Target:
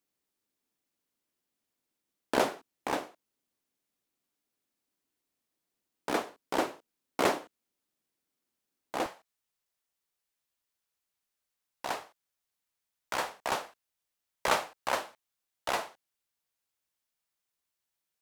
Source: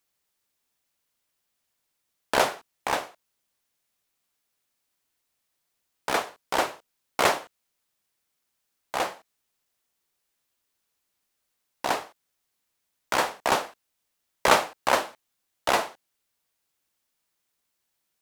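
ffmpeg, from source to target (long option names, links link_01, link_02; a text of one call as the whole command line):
ffmpeg -i in.wav -af "asetnsamples=nb_out_samples=441:pad=0,asendcmd='9.06 equalizer g -2.5',equalizer=frequency=280:width_type=o:width=1.5:gain=11.5,volume=-8dB" out.wav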